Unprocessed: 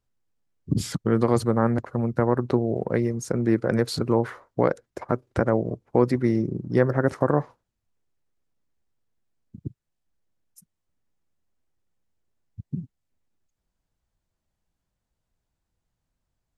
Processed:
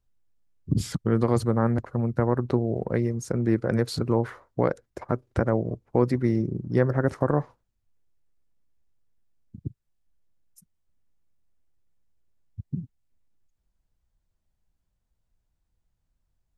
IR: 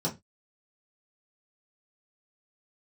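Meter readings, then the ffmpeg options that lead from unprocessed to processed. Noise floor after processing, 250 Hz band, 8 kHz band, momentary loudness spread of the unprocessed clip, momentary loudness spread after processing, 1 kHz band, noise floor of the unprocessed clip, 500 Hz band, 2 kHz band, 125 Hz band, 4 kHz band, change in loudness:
−77 dBFS, −2.0 dB, can't be measured, 14 LU, 13 LU, −3.0 dB, −82 dBFS, −2.5 dB, −3.0 dB, +0.5 dB, −3.0 dB, −1.5 dB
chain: -af "lowshelf=frequency=84:gain=11.5,volume=-3dB"

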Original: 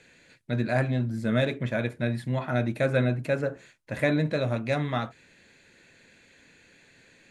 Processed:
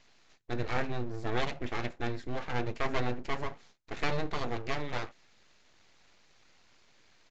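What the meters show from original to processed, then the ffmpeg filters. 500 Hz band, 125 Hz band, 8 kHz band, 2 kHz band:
−9.0 dB, −11.5 dB, can't be measured, −5.5 dB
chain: -af "aeval=exprs='abs(val(0))':channel_layout=same,aresample=16000,aresample=44100,volume=-4dB"

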